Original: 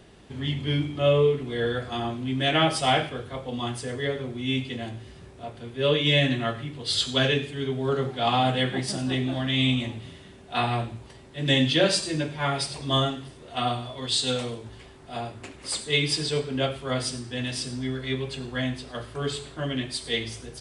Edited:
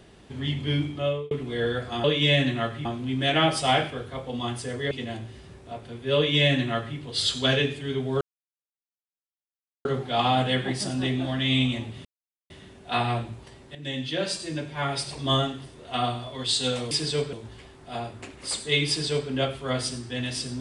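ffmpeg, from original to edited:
-filter_complex "[0:a]asplit=10[s0][s1][s2][s3][s4][s5][s6][s7][s8][s9];[s0]atrim=end=1.31,asetpts=PTS-STARTPTS,afade=t=out:st=0.88:d=0.43[s10];[s1]atrim=start=1.31:end=2.042,asetpts=PTS-STARTPTS,afade=t=in:d=0.004:c=hsin[s11];[s2]atrim=start=5.878:end=6.692[s12];[s3]atrim=start=2.038:end=4.102[s13];[s4]atrim=start=4.628:end=7.93,asetpts=PTS-STARTPTS,afade=t=out:st=3.298:d=0.004:c=hsin,apad=pad_dur=1.64[s14];[s5]atrim=start=7.93:end=10.13,asetpts=PTS-STARTPTS,afade=t=in:d=0.004:c=hsin,afade=t=out:st=2.196:d=0.004:c=hsin,apad=pad_dur=0.45[s15];[s6]atrim=start=10.13:end=11.38,asetpts=PTS-STARTPTS,afade=t=in:d=0.004:c=hsin,afade=t=out:st=1.246:d=0.004:c=hsin:silence=0.188365[s16];[s7]atrim=start=11.38:end=14.542,asetpts=PTS-STARTPTS,afade=t=in:d=1.46:silence=0.188365[s17];[s8]atrim=start=16.088:end=16.512[s18];[s9]atrim=start=14.538[s19];[s10][s11]concat=n=2:v=0:a=1[s20];[s20][s12]acrossfade=d=0.004:c1=hsin:c2=hsin[s21];[s21][s13]acrossfade=d=0.004:c1=hsin:c2=hsin[s22];[s14][s15][s16][s17]concat=n=4:v=0:a=1[s23];[s22][s23]acrossfade=d=0.004:c1=hsin:c2=hsin[s24];[s24][s18]acrossfade=d=0.004:c1=hsin:c2=hsin[s25];[s25][s19]acrossfade=d=0.004:c1=hsin:c2=hsin"

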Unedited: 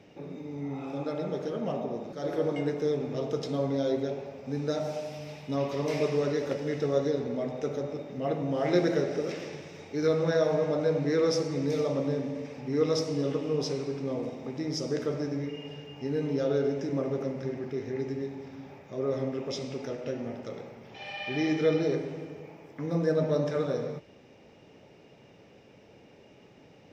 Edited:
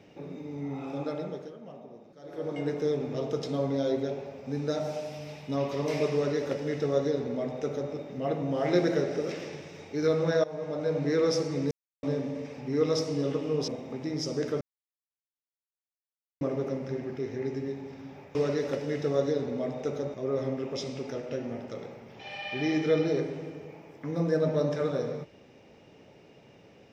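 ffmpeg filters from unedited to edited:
-filter_complex "[0:a]asplit=11[s0][s1][s2][s3][s4][s5][s6][s7][s8][s9][s10];[s0]atrim=end=1.56,asetpts=PTS-STARTPTS,afade=t=out:st=1.08:d=0.48:silence=0.199526[s11];[s1]atrim=start=1.56:end=2.26,asetpts=PTS-STARTPTS,volume=0.2[s12];[s2]atrim=start=2.26:end=10.44,asetpts=PTS-STARTPTS,afade=t=in:d=0.48:silence=0.199526,afade=t=out:st=8.176:d=0.004:c=hsin:silence=0.158489[s13];[s3]atrim=start=10.44:end=11.71,asetpts=PTS-STARTPTS,afade=t=in:d=0.63:silence=0.158489,afade=t=out:st=1.266:d=0.004:c=hsin[s14];[s4]atrim=start=11.71:end=12.03,asetpts=PTS-STARTPTS,volume=0[s15];[s5]atrim=start=12.03:end=13.682,asetpts=PTS-STARTPTS,afade=t=in:d=0.004:c=hsin[s16];[s6]atrim=start=14.218:end=15.15,asetpts=PTS-STARTPTS,afade=t=out:st=0.928:d=0.004:c=hsin[s17];[s7]atrim=start=15.15:end=16.95,asetpts=PTS-STARTPTS,volume=0[s18];[s8]atrim=start=16.95:end=18.892,asetpts=PTS-STARTPTS,afade=t=in:d=0.004:c=hsin[s19];[s9]atrim=start=6.128:end=7.922[s20];[s10]atrim=start=18.888[s21];[s11][s12][s13][s14][s15][s16]concat=n=6:v=0:a=1[s22];[s17][s18][s19]concat=n=3:v=0:a=1[s23];[s22][s23]acrossfade=d=0.004:c1=hsin:c2=hsin[s24];[s24][s20]acrossfade=d=0.004:c1=hsin:c2=hsin[s25];[s25][s21]acrossfade=d=0.004:c1=hsin:c2=hsin"

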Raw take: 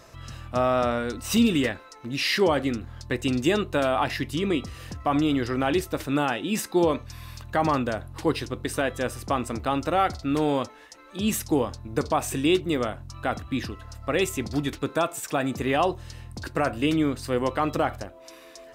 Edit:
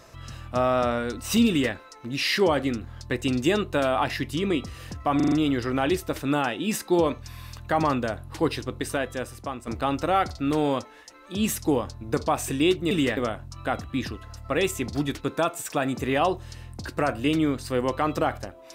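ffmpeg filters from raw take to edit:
-filter_complex "[0:a]asplit=8[s0][s1][s2][s3][s4][s5][s6][s7];[s0]atrim=end=5.202[s8];[s1]atrim=start=5.158:end=5.202[s9];[s2]atrim=start=5.158:end=5.202[s10];[s3]atrim=start=5.158:end=5.202[s11];[s4]atrim=start=5.158:end=9.51,asetpts=PTS-STARTPTS,afade=t=out:st=3.452:d=0.9:silence=0.298538[s12];[s5]atrim=start=9.51:end=12.752,asetpts=PTS-STARTPTS,afade=t=in:d=0.004:c=hsin:silence=0.298538[s13];[s6]atrim=start=1.478:end=1.742[s14];[s7]atrim=start=12.748[s15];[s8][s9]acrossfade=d=0.004:c1=hsin:c2=hsin[s16];[s16][s10]acrossfade=d=0.004:c1=hsin:c2=hsin[s17];[s17][s11]acrossfade=d=0.004:c1=hsin:c2=hsin[s18];[s12][s13]concat=n=2:v=0:a=1[s19];[s18][s19]acrossfade=d=0.004:c1=hsin:c2=hsin[s20];[s20][s14]acrossfade=d=0.004:c1=hsin:c2=hsin[s21];[s21][s15]acrossfade=d=0.004:c1=hsin:c2=hsin"

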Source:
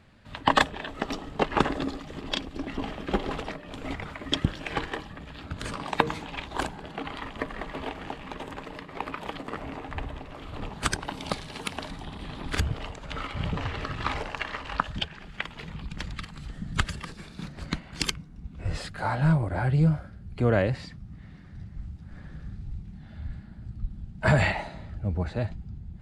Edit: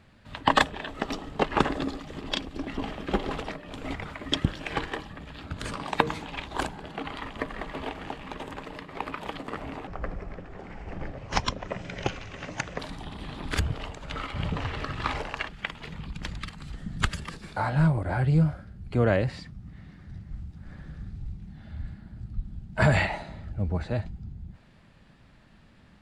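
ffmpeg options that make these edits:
-filter_complex "[0:a]asplit=5[s0][s1][s2][s3][s4];[s0]atrim=end=9.874[s5];[s1]atrim=start=9.87:end=11.8,asetpts=PTS-STARTPTS,asetrate=29106,aresample=44100,atrim=end_sample=128959,asetpts=PTS-STARTPTS[s6];[s2]atrim=start=11.796:end=14.492[s7];[s3]atrim=start=15.238:end=17.322[s8];[s4]atrim=start=19.018[s9];[s5][s6]acrossfade=d=0.004:c1=hsin:c2=hsin[s10];[s10][s7]acrossfade=d=0.004:c1=hsin:c2=hsin[s11];[s11][s8]acrossfade=d=0.004:c1=hsin:c2=hsin[s12];[s12][s9]acrossfade=d=0.004:c1=hsin:c2=hsin"

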